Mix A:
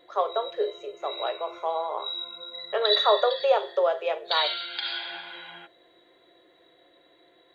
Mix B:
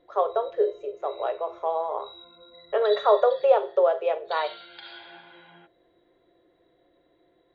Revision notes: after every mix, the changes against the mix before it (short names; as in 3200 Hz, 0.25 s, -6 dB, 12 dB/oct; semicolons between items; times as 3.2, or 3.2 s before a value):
background -7.5 dB; master: add tilt -3.5 dB/oct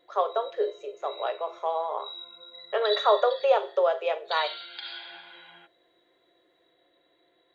master: add tilt +3.5 dB/oct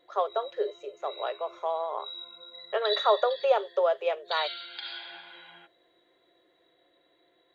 reverb: off